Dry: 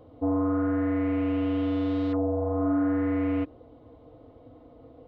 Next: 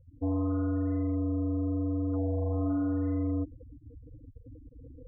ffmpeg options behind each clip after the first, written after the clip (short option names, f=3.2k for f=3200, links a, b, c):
-af "aemphasis=mode=reproduction:type=bsi,afftfilt=real='re*gte(hypot(re,im),0.0282)':imag='im*gte(hypot(re,im),0.0282)':win_size=1024:overlap=0.75,areverse,acompressor=mode=upward:threshold=-32dB:ratio=2.5,areverse,volume=-8.5dB"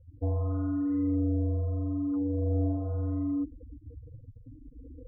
-filter_complex "[0:a]tiltshelf=f=780:g=5,asplit=2[a][b];[b]afreqshift=0.79[c];[a][c]amix=inputs=2:normalize=1"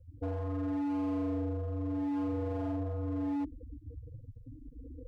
-filter_complex "[0:a]acrossover=split=200[a][b];[a]alimiter=level_in=9.5dB:limit=-24dB:level=0:latency=1,volume=-9.5dB[c];[c][b]amix=inputs=2:normalize=0,asoftclip=type=hard:threshold=-31dB"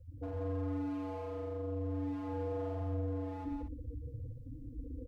-af "alimiter=level_in=13.5dB:limit=-24dB:level=0:latency=1,volume=-13.5dB,aecho=1:1:113.7|177.8|236.2:0.447|0.631|0.355,volume=1.5dB"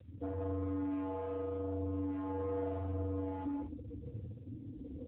-af "asoftclip=type=tanh:threshold=-33.5dB,volume=3.5dB" -ar 8000 -c:a libopencore_amrnb -b:a 10200